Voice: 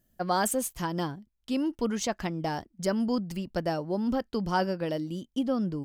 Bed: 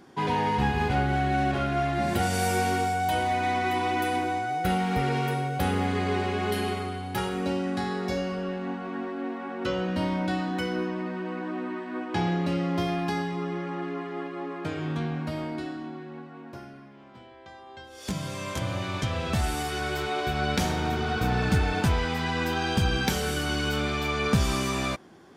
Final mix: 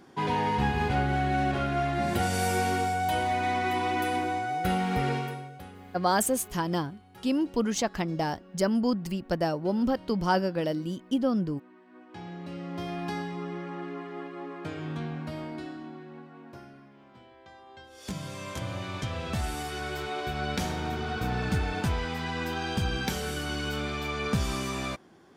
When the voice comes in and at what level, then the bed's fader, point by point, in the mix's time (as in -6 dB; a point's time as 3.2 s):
5.75 s, +2.0 dB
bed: 5.11 s -1.5 dB
5.73 s -21.5 dB
11.76 s -21.5 dB
13.08 s -4.5 dB